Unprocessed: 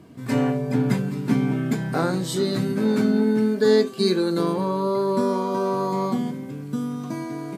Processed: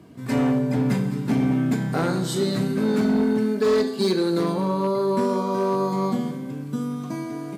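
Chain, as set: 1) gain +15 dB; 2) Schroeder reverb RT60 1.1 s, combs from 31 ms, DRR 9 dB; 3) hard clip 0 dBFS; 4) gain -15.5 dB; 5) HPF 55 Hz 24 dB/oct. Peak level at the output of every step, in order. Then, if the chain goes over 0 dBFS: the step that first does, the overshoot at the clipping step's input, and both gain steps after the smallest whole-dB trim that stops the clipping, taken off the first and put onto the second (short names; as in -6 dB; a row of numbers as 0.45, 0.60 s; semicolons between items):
+8.5, +9.0, 0.0, -15.5, -11.5 dBFS; step 1, 9.0 dB; step 1 +6 dB, step 4 -6.5 dB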